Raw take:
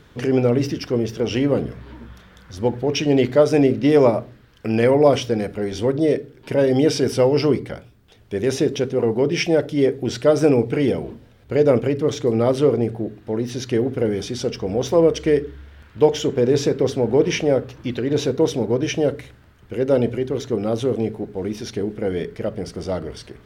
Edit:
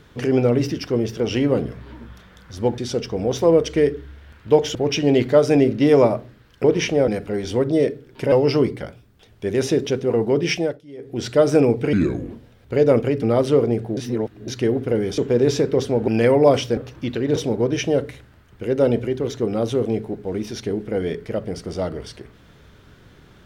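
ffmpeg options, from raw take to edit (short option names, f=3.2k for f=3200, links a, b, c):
-filter_complex "[0:a]asplit=17[a][b][c][d][e][f][g][h][i][j][k][l][m][n][o][p][q];[a]atrim=end=2.782[r];[b]atrim=start=14.278:end=16.252[s];[c]atrim=start=2.778:end=4.672[t];[d]atrim=start=17.148:end=17.592[u];[e]atrim=start=5.358:end=6.602[v];[f]atrim=start=7.208:end=9.7,asetpts=PTS-STARTPTS,afade=t=out:st=2.192:d=0.3:silence=0.0841395[w];[g]atrim=start=9.7:end=9.86,asetpts=PTS-STARTPTS,volume=-21.5dB[x];[h]atrim=start=9.86:end=10.824,asetpts=PTS-STARTPTS,afade=t=in:d=0.3:silence=0.0841395[y];[i]atrim=start=10.82:end=11.1,asetpts=PTS-STARTPTS,asetrate=32634,aresample=44100,atrim=end_sample=16686,asetpts=PTS-STARTPTS[z];[j]atrim=start=11.096:end=12.022[aa];[k]atrim=start=12.328:end=13.072[ab];[l]atrim=start=13.068:end=13.582,asetpts=PTS-STARTPTS,areverse[ac];[m]atrim=start=13.578:end=14.282[ad];[n]atrim=start=16.248:end=17.152[ae];[o]atrim=start=4.668:end=5.362[af];[p]atrim=start=17.588:end=18.182[ag];[q]atrim=start=18.458[ah];[r][s]acrossfade=d=0.004:c1=hsin:c2=hsin[ai];[ai][t]acrossfade=d=0.004:c1=hsin:c2=hsin[aj];[aj][u]acrossfade=d=0.004:c1=hsin:c2=hsin[ak];[ak][v]acrossfade=d=0.004:c1=hsin:c2=hsin[al];[w][x][y]concat=n=3:v=0:a=1[am];[al][am]acrossfade=d=0.004:c1=hsin:c2=hsin[an];[an][z]acrossfade=d=0.004:c1=hsin:c2=hsin[ao];[ao][aa]acrossfade=d=0.004:c1=hsin:c2=hsin[ap];[ap][ab]acrossfade=d=0.004:c1=hsin:c2=hsin[aq];[aq][ac]acrossfade=d=0.004:c1=hsin:c2=hsin[ar];[ar][ad]acrossfade=d=0.004:c1=hsin:c2=hsin[as];[as][ae]acrossfade=d=0.004:c1=hsin:c2=hsin[at];[at][af]acrossfade=d=0.004:c1=hsin:c2=hsin[au];[au][ag]acrossfade=d=0.004:c1=hsin:c2=hsin[av];[av][ah]acrossfade=d=0.004:c1=hsin:c2=hsin"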